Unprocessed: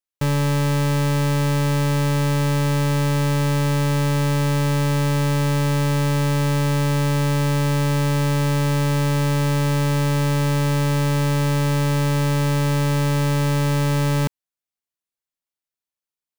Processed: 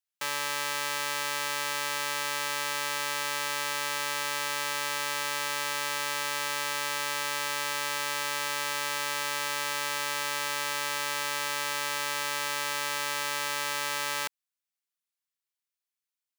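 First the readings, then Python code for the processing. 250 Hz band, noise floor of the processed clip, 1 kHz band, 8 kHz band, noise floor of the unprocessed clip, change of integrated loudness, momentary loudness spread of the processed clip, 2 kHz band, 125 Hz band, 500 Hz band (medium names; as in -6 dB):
-28.5 dB, under -85 dBFS, -5.0 dB, 0.0 dB, under -85 dBFS, -9.5 dB, 0 LU, -0.5 dB, -37.0 dB, -14.5 dB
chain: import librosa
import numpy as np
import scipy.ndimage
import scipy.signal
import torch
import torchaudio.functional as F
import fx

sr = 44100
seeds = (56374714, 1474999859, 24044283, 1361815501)

y = scipy.signal.sosfilt(scipy.signal.butter(2, 1200.0, 'highpass', fs=sr, output='sos'), x)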